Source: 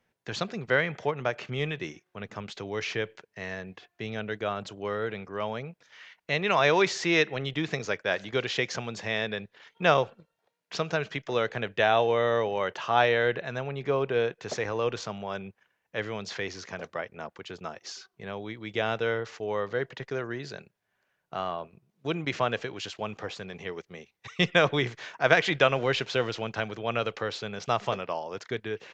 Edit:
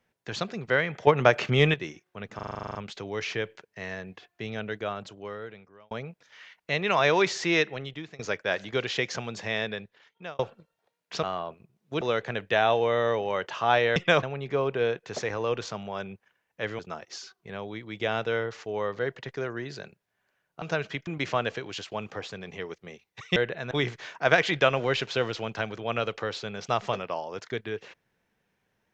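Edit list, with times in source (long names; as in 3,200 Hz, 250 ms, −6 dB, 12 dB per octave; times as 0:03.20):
0:01.07–0:01.74: clip gain +9.5 dB
0:02.35: stutter 0.04 s, 11 plays
0:04.27–0:05.51: fade out
0:07.14–0:07.79: fade out, to −21 dB
0:09.23–0:09.99: fade out
0:10.83–0:11.28: swap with 0:21.36–0:22.14
0:13.23–0:13.58: swap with 0:24.43–0:24.70
0:16.14–0:17.53: remove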